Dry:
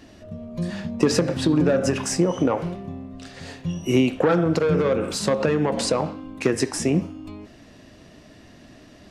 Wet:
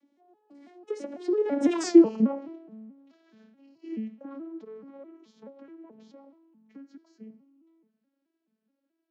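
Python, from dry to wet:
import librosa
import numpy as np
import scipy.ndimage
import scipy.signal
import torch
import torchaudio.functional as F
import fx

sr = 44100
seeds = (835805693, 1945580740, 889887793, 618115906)

y = fx.vocoder_arp(x, sr, chord='major triad', root=59, every_ms=190)
y = fx.doppler_pass(y, sr, speed_mps=44, closest_m=4.5, pass_at_s=1.85)
y = F.gain(torch.from_numpy(y), 7.0).numpy()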